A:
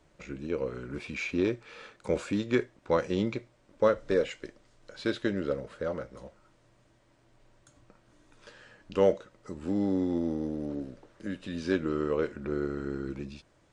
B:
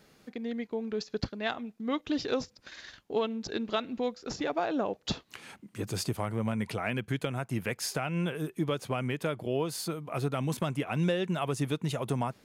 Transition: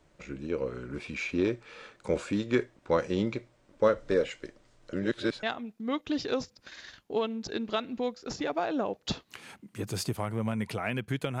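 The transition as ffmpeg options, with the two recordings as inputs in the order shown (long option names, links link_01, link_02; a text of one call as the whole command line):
ffmpeg -i cue0.wav -i cue1.wav -filter_complex "[0:a]apad=whole_dur=11.4,atrim=end=11.4,asplit=2[link_01][link_02];[link_01]atrim=end=4.932[link_03];[link_02]atrim=start=4.928:end=5.432,asetpts=PTS-STARTPTS,areverse[link_04];[1:a]atrim=start=1.428:end=7.4[link_05];[link_03][link_04]acrossfade=duration=0.004:curve1=hsin:curve2=hsin[link_06];[link_06][link_05]acrossfade=duration=0.004:curve1=hsin:curve2=hsin" out.wav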